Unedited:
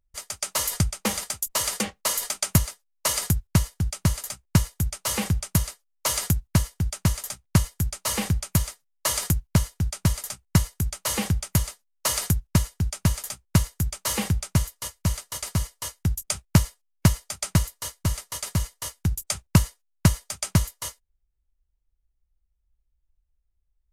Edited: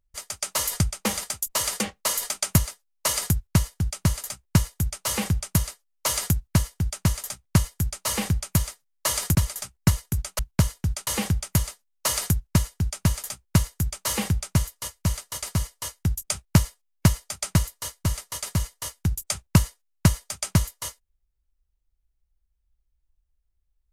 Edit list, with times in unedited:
0:09.35–0:10.03: move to 0:11.07

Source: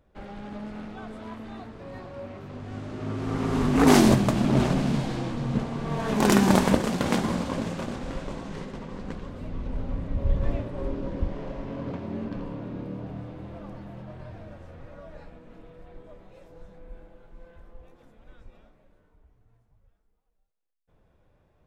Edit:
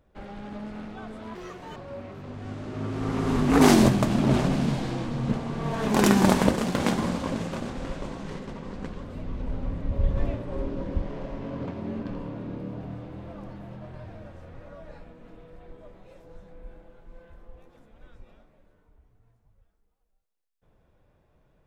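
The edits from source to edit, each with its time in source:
0:01.35–0:02.02: play speed 163%

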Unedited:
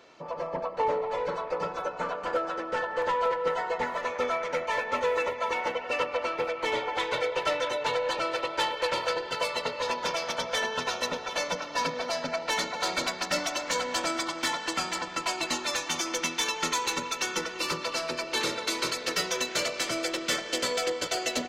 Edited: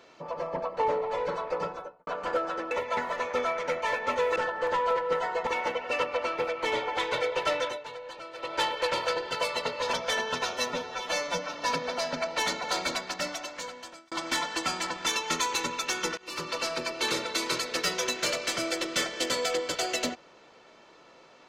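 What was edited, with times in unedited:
0:01.57–0:02.07: fade out and dull
0:02.71–0:03.82: swap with 0:05.21–0:05.47
0:07.62–0:08.56: duck −13 dB, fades 0.21 s
0:09.93–0:10.38: remove
0:10.98–0:11.65: time-stretch 1.5×
0:12.82–0:14.23: fade out
0:15.18–0:16.39: remove
0:17.50–0:17.88: fade in, from −21.5 dB

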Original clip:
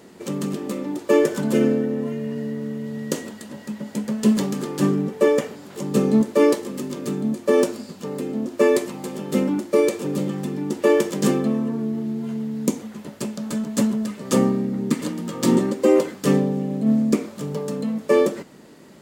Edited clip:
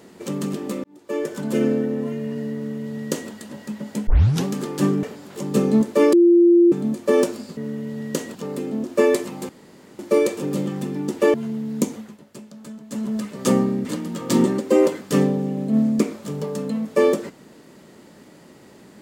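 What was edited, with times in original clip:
0:00.84–0:01.79: fade in
0:02.54–0:03.32: duplicate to 0:07.97
0:04.07: tape start 0.38 s
0:05.03–0:05.43: remove
0:06.53–0:07.12: beep over 345 Hz −9.5 dBFS
0:09.11–0:09.61: fill with room tone
0:10.96–0:12.20: remove
0:12.84–0:14.01: duck −12 dB, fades 0.21 s
0:14.71–0:14.98: remove

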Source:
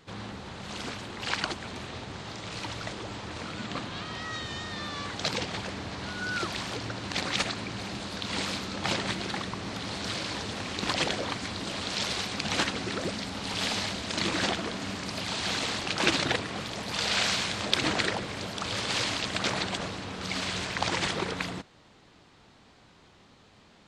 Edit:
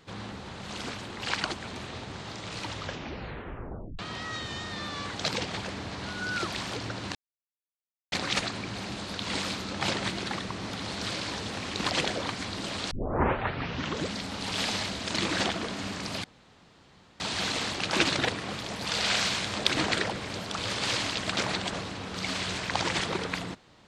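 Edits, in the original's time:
0:02.68: tape stop 1.31 s
0:07.15: splice in silence 0.97 s
0:11.94: tape start 1.24 s
0:15.27: splice in room tone 0.96 s

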